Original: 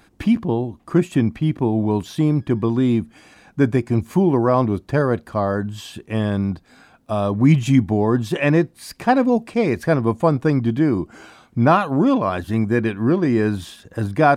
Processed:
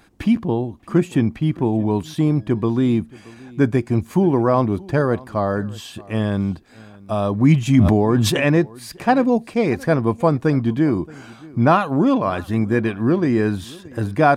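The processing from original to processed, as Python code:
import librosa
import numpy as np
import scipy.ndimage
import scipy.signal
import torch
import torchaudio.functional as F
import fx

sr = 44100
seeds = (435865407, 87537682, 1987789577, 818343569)

y = x + 10.0 ** (-22.5 / 20.0) * np.pad(x, (int(625 * sr / 1000.0), 0))[:len(x)]
y = fx.sustainer(y, sr, db_per_s=24.0, at=(7.69, 8.43))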